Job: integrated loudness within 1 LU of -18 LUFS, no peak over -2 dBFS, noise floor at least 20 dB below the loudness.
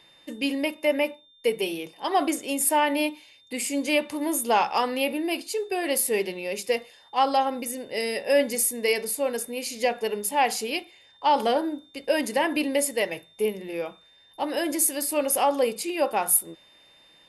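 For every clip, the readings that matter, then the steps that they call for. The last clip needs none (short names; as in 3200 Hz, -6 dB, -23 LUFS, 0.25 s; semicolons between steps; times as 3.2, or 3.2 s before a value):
steady tone 3600 Hz; tone level -55 dBFS; loudness -25.5 LUFS; peak -7.5 dBFS; loudness target -18.0 LUFS
-> notch 3600 Hz, Q 30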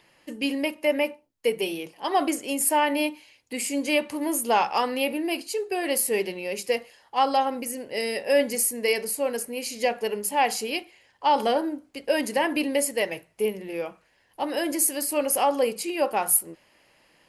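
steady tone none; loudness -25.5 LUFS; peak -7.5 dBFS; loudness target -18.0 LUFS
-> gain +7.5 dB; limiter -2 dBFS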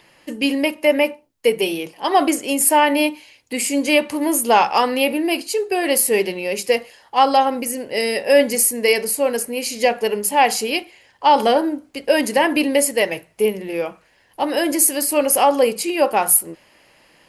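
loudness -18.0 LUFS; peak -2.0 dBFS; noise floor -57 dBFS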